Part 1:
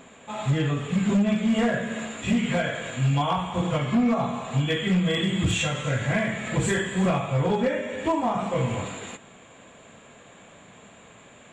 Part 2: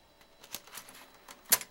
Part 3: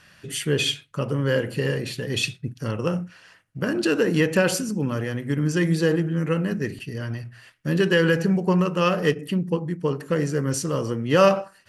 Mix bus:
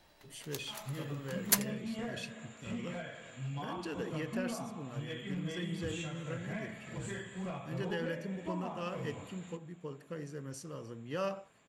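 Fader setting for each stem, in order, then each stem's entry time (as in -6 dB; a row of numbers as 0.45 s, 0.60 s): -17.5 dB, -2.5 dB, -19.5 dB; 0.40 s, 0.00 s, 0.00 s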